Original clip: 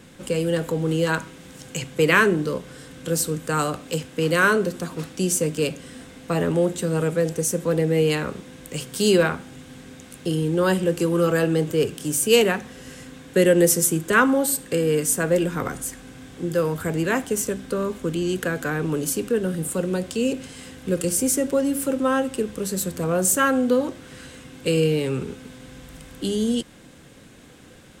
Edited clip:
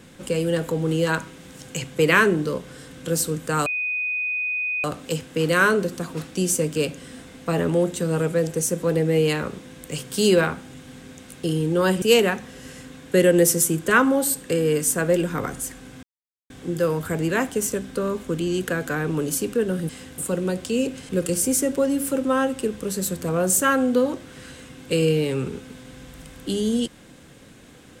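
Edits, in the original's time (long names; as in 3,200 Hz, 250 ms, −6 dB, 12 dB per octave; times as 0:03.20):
0:03.66: insert tone 2,490 Hz −22.5 dBFS 1.18 s
0:10.84–0:12.24: remove
0:16.25: splice in silence 0.47 s
0:20.55–0:20.84: move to 0:19.64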